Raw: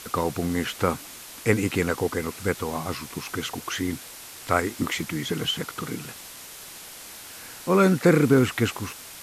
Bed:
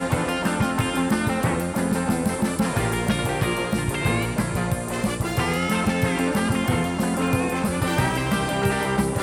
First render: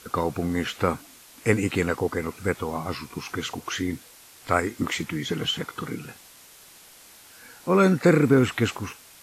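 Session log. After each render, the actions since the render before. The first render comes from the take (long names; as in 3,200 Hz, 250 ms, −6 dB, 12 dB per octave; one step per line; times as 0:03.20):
noise reduction from a noise print 8 dB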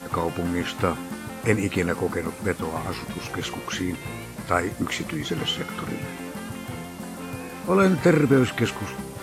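mix in bed −12.5 dB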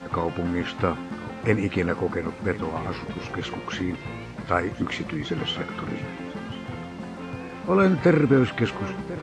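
high-frequency loss of the air 140 metres
single-tap delay 1,042 ms −17 dB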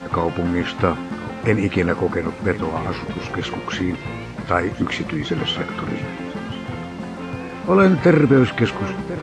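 level +5.5 dB
brickwall limiter −3 dBFS, peak gain reduction 2.5 dB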